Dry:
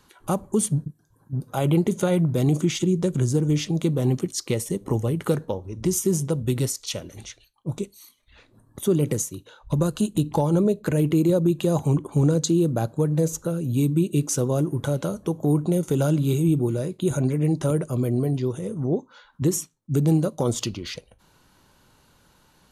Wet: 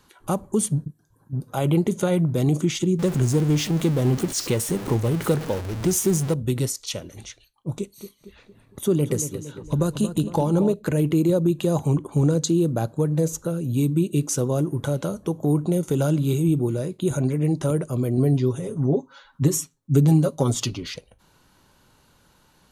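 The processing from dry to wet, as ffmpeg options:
ffmpeg -i in.wav -filter_complex "[0:a]asettb=1/sr,asplit=3[link_01][link_02][link_03];[link_01]atrim=end=2.994[link_04];[link_02]atrim=start=2.99:end=6.34,asetpts=PTS-STARTPTS,afade=type=in:duration=0.004:curve=qsin,afade=type=out:start_time=3.346:duration=0.004:curve=qsin,aeval=exprs='val(0)+0.5*0.0398*sgn(val(0))':channel_layout=same[link_05];[link_03]atrim=start=6.336[link_06];[link_04][link_05]acrossfade=duration=0.004:curve1=hsin:curve2=qsin[link_07];[link_07][link_06]acrossfade=duration=0.004:curve1=qsin:curve2=hsin,asettb=1/sr,asplit=3[link_08][link_09][link_10];[link_08]atrim=end=7.754[link_11];[link_09]atrim=start=7.75:end=10.74,asetpts=PTS-STARTPTS,afade=type=in:duration=0.004:curve=qsin,afade=type=out:start_time=2.986:duration=0.004:curve=qsin,asplit=2[link_12][link_13];[link_13]adelay=229,lowpass=frequency=3100:poles=1,volume=-10dB,asplit=2[link_14][link_15];[link_15]adelay=229,lowpass=frequency=3100:poles=1,volume=0.52,asplit=2[link_16][link_17];[link_17]adelay=229,lowpass=frequency=3100:poles=1,volume=0.52,asplit=2[link_18][link_19];[link_19]adelay=229,lowpass=frequency=3100:poles=1,volume=0.52,asplit=2[link_20][link_21];[link_21]adelay=229,lowpass=frequency=3100:poles=1,volume=0.52,asplit=2[link_22][link_23];[link_23]adelay=229,lowpass=frequency=3100:poles=1,volume=0.52[link_24];[link_12][link_14][link_16][link_18][link_20][link_22][link_24]amix=inputs=7:normalize=0,atrim=end_sample=131859[link_25];[link_10]atrim=start=10.736[link_26];[link_11][link_25]acrossfade=duration=0.004:curve1=hsin:curve2=qsin[link_27];[link_27][link_26]acrossfade=duration=0.004:curve1=qsin:curve2=hsin,asettb=1/sr,asplit=3[link_28][link_29][link_30];[link_28]atrim=end=18.174[link_31];[link_29]atrim=start=18.17:end=20.86,asetpts=PTS-STARTPTS,afade=type=in:duration=0.004:curve=qsin,afade=type=out:start_time=2.686:duration=0.004:curve=qsin,aecho=1:1:7.3:0.77,atrim=end_sample=118629[link_32];[link_30]atrim=start=20.856[link_33];[link_31][link_32]acrossfade=duration=0.004:curve1=hsin:curve2=qsin[link_34];[link_34][link_33]acrossfade=duration=0.004:curve1=qsin:curve2=hsin" out.wav

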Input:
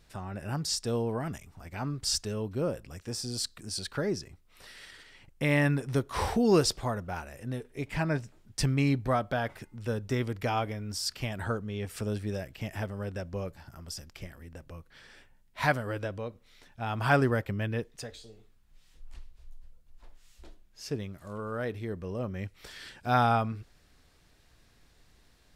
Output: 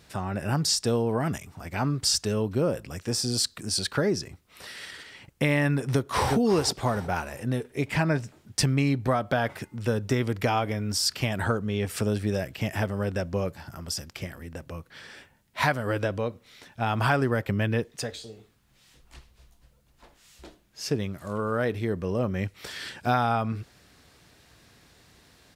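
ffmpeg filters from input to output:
ffmpeg -i in.wav -filter_complex "[0:a]asplit=2[link_01][link_02];[link_02]afade=type=in:start_time=5.8:duration=0.01,afade=type=out:start_time=6.36:duration=0.01,aecho=0:1:360|720|1080:0.530884|0.132721|0.0331803[link_03];[link_01][link_03]amix=inputs=2:normalize=0,highpass=84,acompressor=threshold=-29dB:ratio=5,volume=8.5dB" out.wav

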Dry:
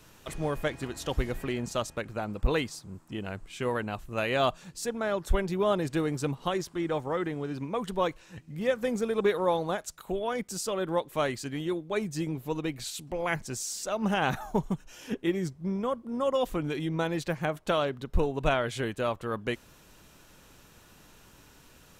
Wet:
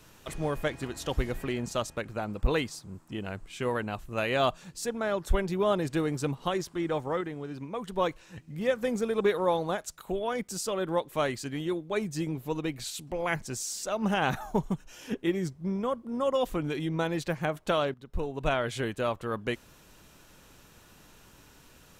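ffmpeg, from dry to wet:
ffmpeg -i in.wav -filter_complex "[0:a]asplit=4[link_01][link_02][link_03][link_04];[link_01]atrim=end=7.212[link_05];[link_02]atrim=start=7.208:end=7.962,asetpts=PTS-STARTPTS,volume=-4dB[link_06];[link_03]atrim=start=7.958:end=17.94,asetpts=PTS-STARTPTS,afade=type=out:start_time=9.978:duration=0.004:curve=hsin:silence=0.211349[link_07];[link_04]atrim=start=17.94,asetpts=PTS-STARTPTS,afade=type=in:duration=0.74:silence=0.211349[link_08];[link_05][link_06]acrossfade=duration=0.004:curve1=hsin:curve2=hsin[link_09];[link_07][link_08]concat=n=2:v=0:a=1[link_10];[link_09][link_10]acrossfade=duration=0.004:curve1=hsin:curve2=hsin" out.wav

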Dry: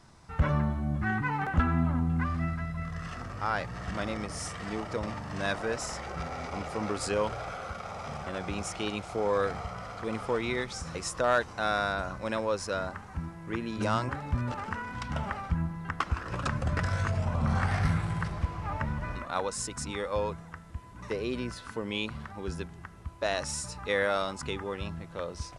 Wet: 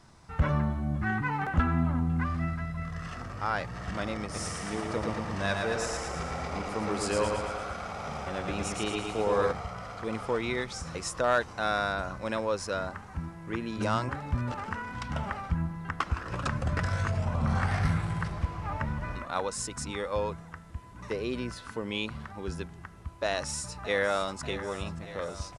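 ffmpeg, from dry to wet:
ffmpeg -i in.wav -filter_complex "[0:a]asplit=3[link_01][link_02][link_03];[link_01]afade=type=out:start_time=4.33:duration=0.02[link_04];[link_02]aecho=1:1:113|226|339|452|565|678|791|904:0.631|0.372|0.22|0.13|0.0765|0.0451|0.0266|0.0157,afade=type=in:start_time=4.33:duration=0.02,afade=type=out:start_time=9.51:duration=0.02[link_05];[link_03]afade=type=in:start_time=9.51:duration=0.02[link_06];[link_04][link_05][link_06]amix=inputs=3:normalize=0,asplit=2[link_07][link_08];[link_08]afade=type=in:start_time=23.25:duration=0.01,afade=type=out:start_time=24.39:duration=0.01,aecho=0:1:590|1180|1770|2360|2950|3540|4130|4720|5310:0.199526|0.139668|0.0977679|0.0684375|0.0479062|0.0335344|0.0234741|0.0164318|0.0115023[link_09];[link_07][link_09]amix=inputs=2:normalize=0" out.wav

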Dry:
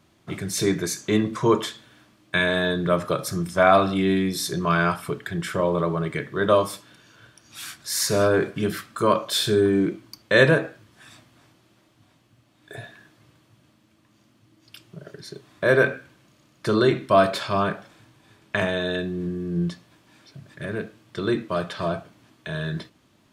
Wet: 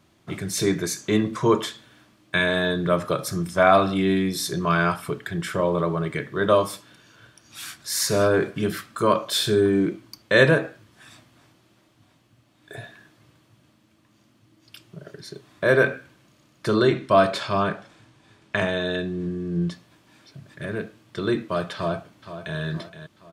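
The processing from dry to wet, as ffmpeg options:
ffmpeg -i in.wav -filter_complex "[0:a]asettb=1/sr,asplit=3[link_01][link_02][link_03];[link_01]atrim=end=16.774[link_04];[link_02]atrim=start=16.77:end=19.71,asetpts=PTS-STARTPTS,afade=type=in:duration=0.004:curve=qsin,afade=type=out:start_time=2.936:duration=0.004:curve=qsin,lowpass=9600[link_05];[link_03]atrim=start=19.706[link_06];[link_04][link_05]acrossfade=duration=0.004:curve1=hsin:curve2=qsin[link_07];[link_07][link_06]acrossfade=duration=0.004:curve1=qsin:curve2=hsin,asplit=2[link_08][link_09];[link_09]afade=type=in:start_time=21.75:duration=0.01,afade=type=out:start_time=22.59:duration=0.01,aecho=0:1:470|940|1410|1880|2350:0.281838|0.140919|0.0704596|0.0352298|0.0176149[link_10];[link_08][link_10]amix=inputs=2:normalize=0" out.wav

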